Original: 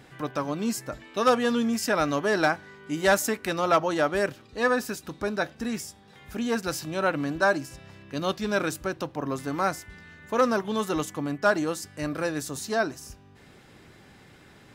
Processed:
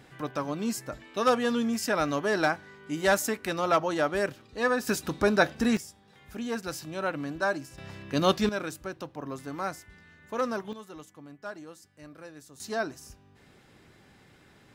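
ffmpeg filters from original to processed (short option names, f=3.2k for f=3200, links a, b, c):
-af "asetnsamples=n=441:p=0,asendcmd='4.87 volume volume 5.5dB;5.77 volume volume -5.5dB;7.78 volume volume 4.5dB;8.49 volume volume -7dB;10.73 volume volume -17.5dB;12.6 volume volume -5dB',volume=-2.5dB"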